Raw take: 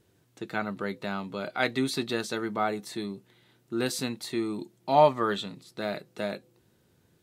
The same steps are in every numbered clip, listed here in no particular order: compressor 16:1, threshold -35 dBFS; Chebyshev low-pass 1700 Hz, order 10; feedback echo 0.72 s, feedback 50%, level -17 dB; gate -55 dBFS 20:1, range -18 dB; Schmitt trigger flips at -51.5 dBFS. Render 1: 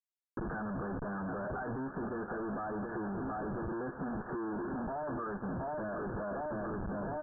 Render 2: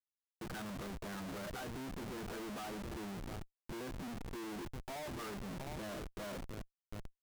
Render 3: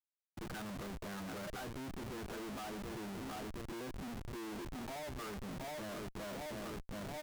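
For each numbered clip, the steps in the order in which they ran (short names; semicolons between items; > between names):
feedback echo > Schmitt trigger > gate > Chebyshev low-pass > compressor; Chebyshev low-pass > compressor > feedback echo > gate > Schmitt trigger; feedback echo > compressor > Chebyshev low-pass > Schmitt trigger > gate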